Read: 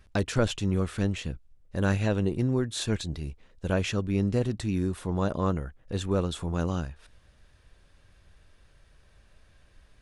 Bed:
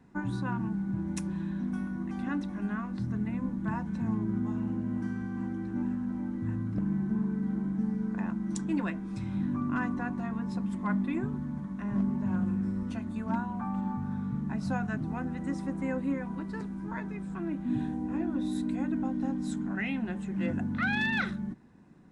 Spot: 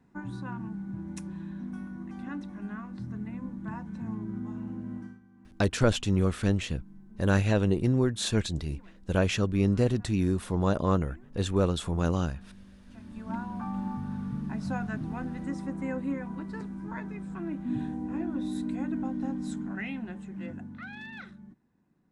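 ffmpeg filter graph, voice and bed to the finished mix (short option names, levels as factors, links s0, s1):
-filter_complex "[0:a]adelay=5450,volume=1.19[s0];[1:a]volume=6.31,afade=t=out:st=4.94:d=0.26:silence=0.141254,afade=t=in:st=12.85:d=0.72:silence=0.0891251,afade=t=out:st=19.44:d=1.45:silence=0.223872[s1];[s0][s1]amix=inputs=2:normalize=0"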